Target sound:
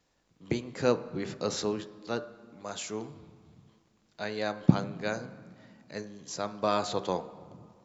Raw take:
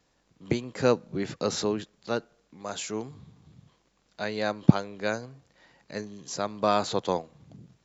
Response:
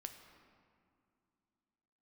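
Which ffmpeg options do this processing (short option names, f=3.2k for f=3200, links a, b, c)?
-filter_complex "[0:a]bandreject=f=65.4:t=h:w=4,bandreject=f=130.8:t=h:w=4,bandreject=f=196.2:t=h:w=4,bandreject=f=261.6:t=h:w=4,bandreject=f=327:t=h:w=4,bandreject=f=392.4:t=h:w=4,bandreject=f=457.8:t=h:w=4,bandreject=f=523.2:t=h:w=4,bandreject=f=588.6:t=h:w=4,bandreject=f=654:t=h:w=4,bandreject=f=719.4:t=h:w=4,bandreject=f=784.8:t=h:w=4,bandreject=f=850.2:t=h:w=4,bandreject=f=915.6:t=h:w=4,bandreject=f=981:t=h:w=4,bandreject=f=1.0464k:t=h:w=4,bandreject=f=1.1118k:t=h:w=4,bandreject=f=1.1772k:t=h:w=4,bandreject=f=1.2426k:t=h:w=4,bandreject=f=1.308k:t=h:w=4,bandreject=f=1.3734k:t=h:w=4,bandreject=f=1.4388k:t=h:w=4,bandreject=f=1.5042k:t=h:w=4,bandreject=f=1.5696k:t=h:w=4,bandreject=f=1.635k:t=h:w=4,bandreject=f=1.7004k:t=h:w=4,bandreject=f=1.7658k:t=h:w=4,asplit=2[a][b];[1:a]atrim=start_sample=2205[c];[b][c]afir=irnorm=-1:irlink=0,volume=-1dB[d];[a][d]amix=inputs=2:normalize=0,volume=-6.5dB"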